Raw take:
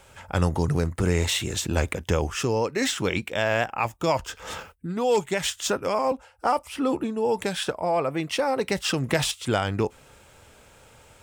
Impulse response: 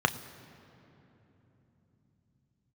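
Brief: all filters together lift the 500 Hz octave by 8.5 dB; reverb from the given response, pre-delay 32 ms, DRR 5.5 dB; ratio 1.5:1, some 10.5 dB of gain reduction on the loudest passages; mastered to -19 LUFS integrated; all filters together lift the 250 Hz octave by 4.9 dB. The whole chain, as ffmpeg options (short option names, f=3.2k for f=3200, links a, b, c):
-filter_complex "[0:a]equalizer=f=250:t=o:g=3.5,equalizer=f=500:t=o:g=9,acompressor=threshold=-41dB:ratio=1.5,asplit=2[a][b];[1:a]atrim=start_sample=2205,adelay=32[c];[b][c]afir=irnorm=-1:irlink=0,volume=-17.5dB[d];[a][d]amix=inputs=2:normalize=0,volume=9.5dB"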